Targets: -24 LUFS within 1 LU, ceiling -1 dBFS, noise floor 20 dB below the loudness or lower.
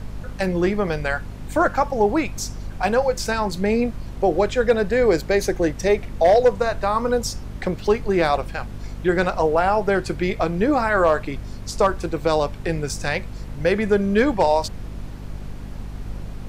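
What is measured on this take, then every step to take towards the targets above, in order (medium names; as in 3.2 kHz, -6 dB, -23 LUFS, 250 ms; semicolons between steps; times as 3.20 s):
hum 50 Hz; highest harmonic 250 Hz; hum level -32 dBFS; noise floor -35 dBFS; noise floor target -41 dBFS; loudness -21.0 LUFS; peak level -5.5 dBFS; loudness target -24.0 LUFS
-> de-hum 50 Hz, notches 5; noise print and reduce 6 dB; trim -3 dB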